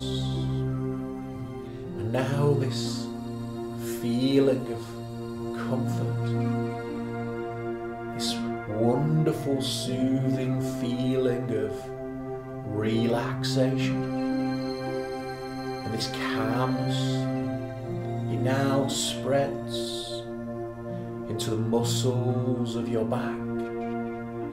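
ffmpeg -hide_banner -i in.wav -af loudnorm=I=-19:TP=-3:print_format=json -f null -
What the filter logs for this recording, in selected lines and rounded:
"input_i" : "-28.6",
"input_tp" : "-10.7",
"input_lra" : "2.4",
"input_thresh" : "-38.6",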